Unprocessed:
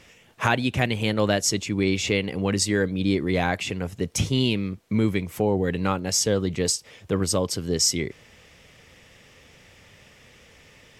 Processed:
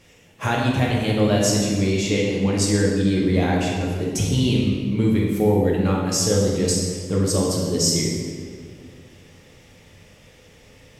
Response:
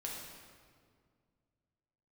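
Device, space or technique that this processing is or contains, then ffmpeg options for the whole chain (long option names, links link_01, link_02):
stairwell: -filter_complex "[1:a]atrim=start_sample=2205[link_01];[0:a][link_01]afir=irnorm=-1:irlink=0,equalizer=frequency=1800:width_type=o:width=2.7:gain=-5.5,volume=4.5dB"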